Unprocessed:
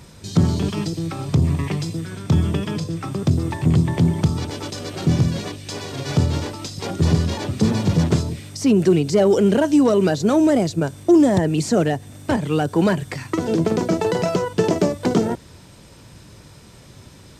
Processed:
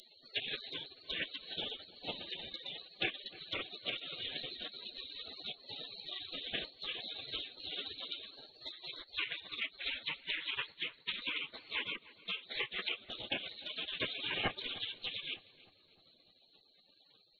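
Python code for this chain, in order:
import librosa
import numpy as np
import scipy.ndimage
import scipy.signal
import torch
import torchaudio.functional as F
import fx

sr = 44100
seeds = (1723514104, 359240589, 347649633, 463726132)

y = scipy.signal.medfilt(x, 9)
y = scipy.signal.sosfilt(scipy.signal.cheby2(4, 40, 390.0, 'highpass', fs=sr, output='sos'), y)
y = fx.peak_eq(y, sr, hz=1700.0, db=8.5, octaves=1.6)
y = fx.rider(y, sr, range_db=5, speed_s=0.5)
y = fx.lpc_vocoder(y, sr, seeds[0], excitation='whisper', order=10)
y = fx.env_lowpass_down(y, sr, base_hz=1800.0, full_db=-23.5)
y = fx.air_absorb(y, sr, metres=57.0)
y = fx.spec_gate(y, sr, threshold_db=-30, keep='weak')
y = fx.echo_filtered(y, sr, ms=304, feedback_pct=60, hz=1700.0, wet_db=-16.5)
y = F.gain(torch.from_numpy(y), 18.0).numpy()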